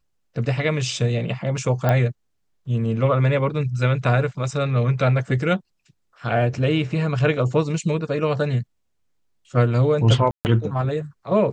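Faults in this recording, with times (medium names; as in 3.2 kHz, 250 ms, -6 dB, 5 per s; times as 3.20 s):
1.89 s: pop -9 dBFS
10.31–10.45 s: dropout 139 ms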